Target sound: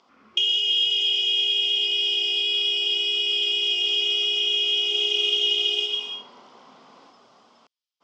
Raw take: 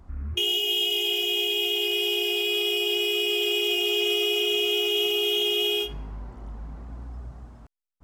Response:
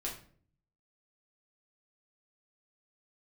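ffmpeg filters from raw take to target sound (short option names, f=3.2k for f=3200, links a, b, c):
-filter_complex "[0:a]tiltshelf=f=1.1k:g=-7,acompressor=threshold=-32dB:ratio=2,highpass=f=240:w=0.5412,highpass=f=240:w=1.3066,equalizer=f=300:t=q:w=4:g=-5,equalizer=f=490:t=q:w=4:g=4,equalizer=f=1.1k:t=q:w=4:g=4,equalizer=f=1.7k:t=q:w=4:g=-8,equalizer=f=3.2k:t=q:w=4:g=8,equalizer=f=5k:t=q:w=4:g=7,lowpass=f=6.2k:w=0.5412,lowpass=f=6.2k:w=1.3066,asettb=1/sr,asplit=3[a][b][c];[a]atrim=end=4.784[d];[b]atrim=start=4.78:end=7.11,asetpts=PTS-STARTPTS,afade=t=in:d=0.004:c=qsin,afade=t=out:st=2.326:d=0.004:c=qsin,aecho=1:1:130|221|284.7|329.3|360.5:0.631|0.398|0.251|0.158|0.1,atrim=end_sample=102753[e];[c]atrim=start=7.106[f];[d][e]acrossfade=d=0.004:c1=hsin:c2=qsin[g];[g][f]acrossfade=d=0.004:c1=qsin:c2=hsin"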